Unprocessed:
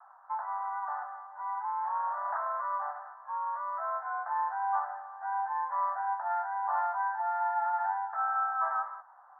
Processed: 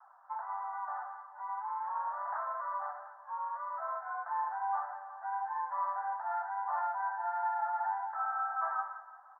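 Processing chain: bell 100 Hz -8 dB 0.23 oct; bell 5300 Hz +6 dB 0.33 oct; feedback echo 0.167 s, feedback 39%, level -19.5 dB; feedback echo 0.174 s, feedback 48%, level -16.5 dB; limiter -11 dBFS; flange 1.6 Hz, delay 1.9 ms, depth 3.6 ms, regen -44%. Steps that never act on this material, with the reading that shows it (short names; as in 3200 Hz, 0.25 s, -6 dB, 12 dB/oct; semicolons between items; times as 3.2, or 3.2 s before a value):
bell 100 Hz: input band starts at 510 Hz; bell 5300 Hz: input band ends at 1800 Hz; limiter -11 dBFS: input peak -19.0 dBFS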